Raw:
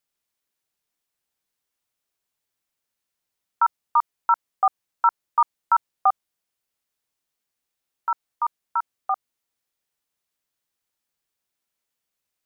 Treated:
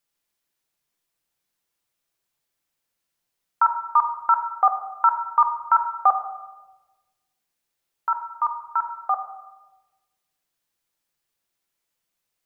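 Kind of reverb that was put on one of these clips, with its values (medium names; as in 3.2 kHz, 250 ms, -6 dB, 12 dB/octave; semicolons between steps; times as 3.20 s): simulated room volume 760 m³, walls mixed, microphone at 0.79 m; trim +1.5 dB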